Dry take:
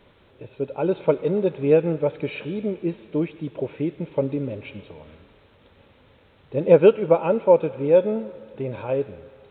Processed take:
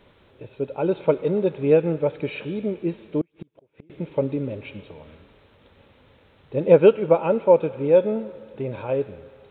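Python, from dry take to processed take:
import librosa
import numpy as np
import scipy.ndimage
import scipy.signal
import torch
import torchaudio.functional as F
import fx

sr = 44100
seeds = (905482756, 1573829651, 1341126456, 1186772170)

y = fx.gate_flip(x, sr, shuts_db=-24.0, range_db=-34, at=(3.21, 3.9))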